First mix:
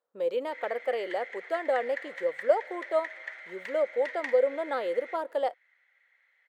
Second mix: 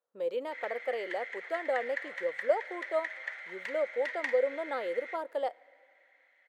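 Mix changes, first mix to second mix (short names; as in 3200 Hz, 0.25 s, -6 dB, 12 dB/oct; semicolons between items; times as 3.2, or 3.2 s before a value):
speech -4.0 dB; background: send on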